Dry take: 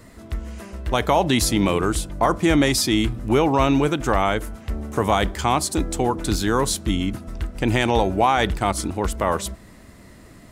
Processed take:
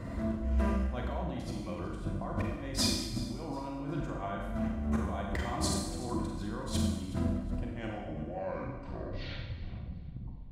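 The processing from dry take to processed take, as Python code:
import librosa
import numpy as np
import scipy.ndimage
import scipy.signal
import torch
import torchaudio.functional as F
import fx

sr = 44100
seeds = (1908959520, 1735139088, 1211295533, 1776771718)

y = fx.tape_stop_end(x, sr, length_s=2.92)
y = fx.lowpass(y, sr, hz=1000.0, slope=6)
y = fx.low_shelf(y, sr, hz=110.0, db=9.0)
y = fx.over_compress(y, sr, threshold_db=-31.0, ratio=-1.0)
y = fx.low_shelf(y, sr, hz=350.0, db=-4.5)
y = fx.notch_comb(y, sr, f0_hz=430.0)
y = fx.echo_feedback(y, sr, ms=370, feedback_pct=31, wet_db=-18.0)
y = fx.rev_schroeder(y, sr, rt60_s=1.0, comb_ms=32, drr_db=-0.5)
y = y * 10.0 ** (-3.5 / 20.0)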